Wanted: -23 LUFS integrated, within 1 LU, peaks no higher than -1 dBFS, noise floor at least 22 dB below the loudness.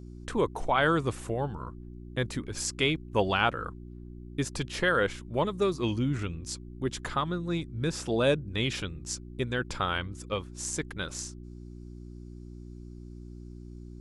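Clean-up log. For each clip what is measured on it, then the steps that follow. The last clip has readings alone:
hum 60 Hz; highest harmonic 360 Hz; hum level -41 dBFS; loudness -30.5 LUFS; peak level -9.5 dBFS; loudness target -23.0 LUFS
-> de-hum 60 Hz, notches 6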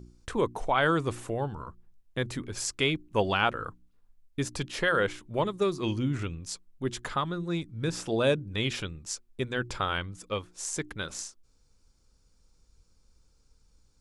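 hum not found; loudness -30.5 LUFS; peak level -9.5 dBFS; loudness target -23.0 LUFS
-> trim +7.5 dB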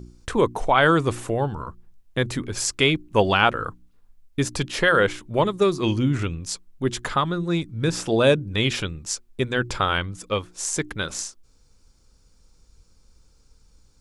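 loudness -23.0 LUFS; peak level -2.0 dBFS; noise floor -58 dBFS

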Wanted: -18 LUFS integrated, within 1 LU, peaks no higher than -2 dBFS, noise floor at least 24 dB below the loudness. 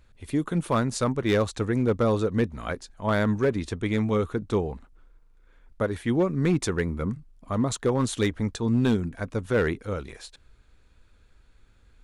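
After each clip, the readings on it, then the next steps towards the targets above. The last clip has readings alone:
clipped samples 0.6%; clipping level -16.0 dBFS; loudness -26.5 LUFS; peak level -16.0 dBFS; loudness target -18.0 LUFS
-> clip repair -16 dBFS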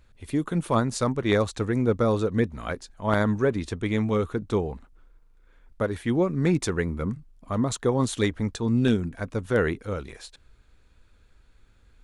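clipped samples 0.0%; loudness -26.0 LUFS; peak level -7.0 dBFS; loudness target -18.0 LUFS
-> trim +8 dB; peak limiter -2 dBFS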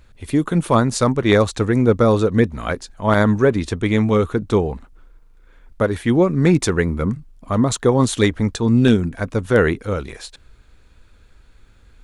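loudness -18.0 LUFS; peak level -2.0 dBFS; noise floor -50 dBFS

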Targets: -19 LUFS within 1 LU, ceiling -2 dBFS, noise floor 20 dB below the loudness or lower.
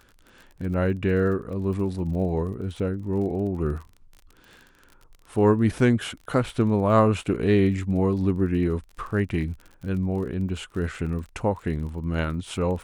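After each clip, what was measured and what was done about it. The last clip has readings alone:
tick rate 33 per s; loudness -25.0 LUFS; peak level -7.0 dBFS; loudness target -19.0 LUFS
-> de-click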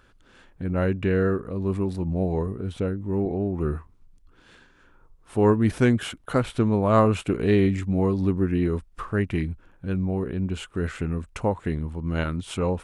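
tick rate 0 per s; loudness -25.0 LUFS; peak level -7.0 dBFS; loudness target -19.0 LUFS
-> trim +6 dB; peak limiter -2 dBFS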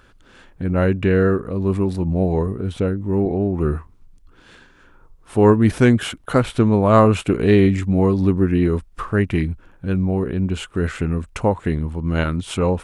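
loudness -19.0 LUFS; peak level -2.0 dBFS; noise floor -51 dBFS

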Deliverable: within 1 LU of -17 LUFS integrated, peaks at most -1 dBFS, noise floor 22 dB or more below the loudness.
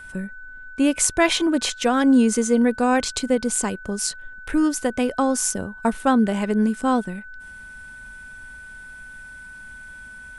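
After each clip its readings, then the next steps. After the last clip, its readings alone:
steady tone 1.5 kHz; tone level -38 dBFS; loudness -21.0 LUFS; peak level -2.0 dBFS; loudness target -17.0 LUFS
-> band-stop 1.5 kHz, Q 30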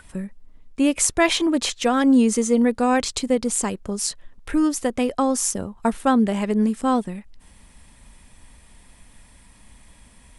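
steady tone not found; loudness -21.0 LUFS; peak level -2.0 dBFS; loudness target -17.0 LUFS
-> trim +4 dB; peak limiter -1 dBFS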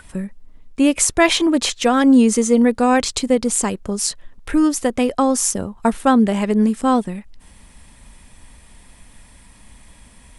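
loudness -17.0 LUFS; peak level -1.0 dBFS; noise floor -48 dBFS

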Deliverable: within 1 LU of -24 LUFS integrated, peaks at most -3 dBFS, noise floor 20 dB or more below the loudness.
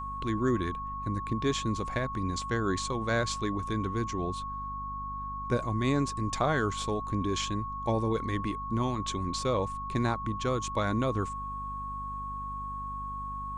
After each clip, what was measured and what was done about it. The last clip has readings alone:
hum 50 Hz; highest harmonic 250 Hz; hum level -40 dBFS; steady tone 1.1 kHz; tone level -35 dBFS; loudness -31.5 LUFS; peak level -14.0 dBFS; loudness target -24.0 LUFS
-> hum notches 50/100/150/200/250 Hz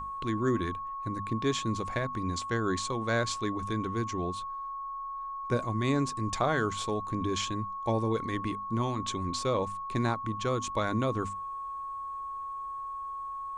hum not found; steady tone 1.1 kHz; tone level -35 dBFS
-> band-stop 1.1 kHz, Q 30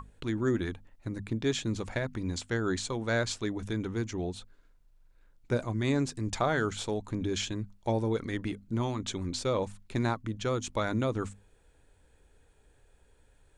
steady tone not found; loudness -32.5 LUFS; peak level -14.0 dBFS; loudness target -24.0 LUFS
-> trim +8.5 dB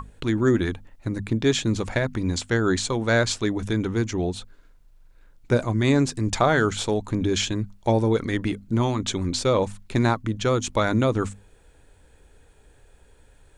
loudness -24.0 LUFS; peak level -5.5 dBFS; noise floor -55 dBFS

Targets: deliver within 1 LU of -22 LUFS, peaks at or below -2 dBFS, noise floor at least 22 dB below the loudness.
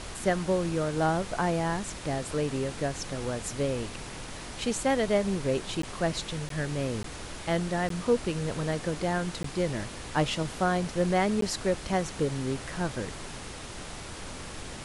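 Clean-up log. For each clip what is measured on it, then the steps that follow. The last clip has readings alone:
dropouts 6; longest dropout 13 ms; noise floor -41 dBFS; noise floor target -53 dBFS; loudness -30.5 LUFS; peak level -12.0 dBFS; loudness target -22.0 LUFS
-> interpolate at 5.82/6.49/7.03/7.89/9.43/11.41 s, 13 ms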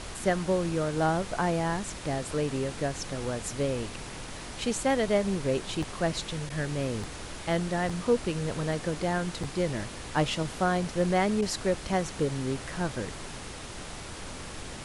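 dropouts 0; noise floor -41 dBFS; noise floor target -53 dBFS
-> noise print and reduce 12 dB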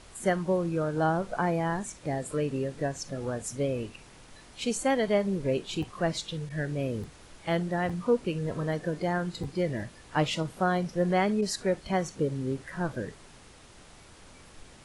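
noise floor -53 dBFS; loudness -30.0 LUFS; peak level -12.0 dBFS; loudness target -22.0 LUFS
-> trim +8 dB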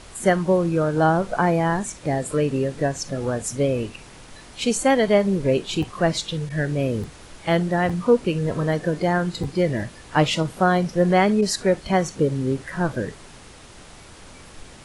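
loudness -22.0 LUFS; peak level -4.0 dBFS; noise floor -45 dBFS

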